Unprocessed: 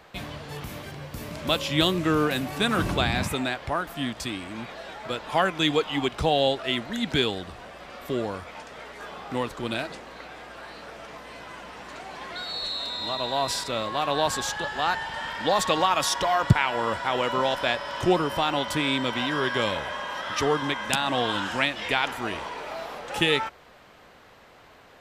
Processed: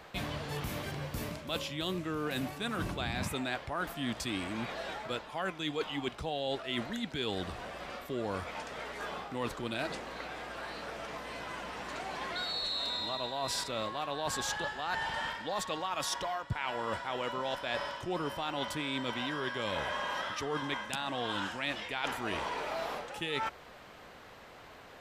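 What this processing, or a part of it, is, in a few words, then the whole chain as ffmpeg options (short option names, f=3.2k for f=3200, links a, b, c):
compression on the reversed sound: -af "areverse,acompressor=threshold=-31dB:ratio=16,areverse"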